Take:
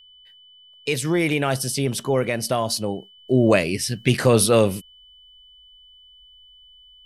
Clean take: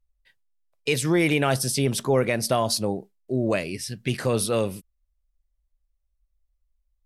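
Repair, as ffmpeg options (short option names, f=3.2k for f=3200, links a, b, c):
-af "bandreject=f=3k:w=30,asetnsamples=n=441:p=0,asendcmd='3.18 volume volume -7.5dB',volume=0dB"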